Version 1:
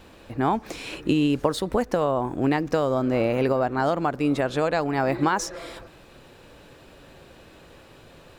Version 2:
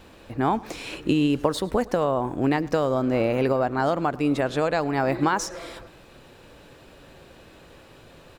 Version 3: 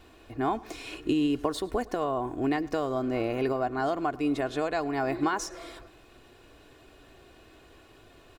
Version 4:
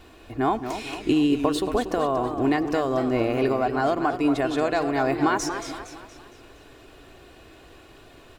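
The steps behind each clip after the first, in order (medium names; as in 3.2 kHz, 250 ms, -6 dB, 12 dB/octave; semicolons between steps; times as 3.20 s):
feedback delay 106 ms, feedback 43%, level -22.5 dB
comb 2.8 ms, depth 55%; trim -6.5 dB
modulated delay 232 ms, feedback 45%, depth 143 cents, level -9 dB; trim +5 dB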